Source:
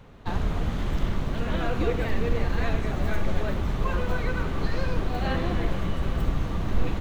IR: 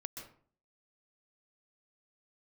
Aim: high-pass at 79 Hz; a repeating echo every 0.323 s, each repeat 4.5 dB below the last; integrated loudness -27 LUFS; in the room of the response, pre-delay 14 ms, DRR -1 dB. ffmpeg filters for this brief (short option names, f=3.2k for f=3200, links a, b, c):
-filter_complex "[0:a]highpass=79,aecho=1:1:323|646|969|1292|1615|1938|2261|2584|2907:0.596|0.357|0.214|0.129|0.0772|0.0463|0.0278|0.0167|0.01,asplit=2[a][b];[1:a]atrim=start_sample=2205,adelay=14[c];[b][c]afir=irnorm=-1:irlink=0,volume=3.5dB[d];[a][d]amix=inputs=2:normalize=0,volume=-2.5dB"